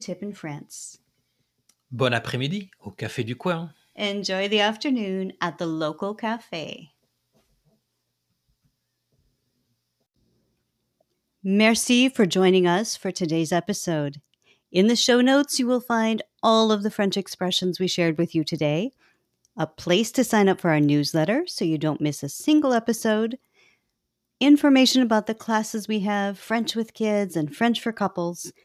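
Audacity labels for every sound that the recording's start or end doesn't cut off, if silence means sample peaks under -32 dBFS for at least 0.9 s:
1.930000	6.790000	sound
11.450000	23.350000	sound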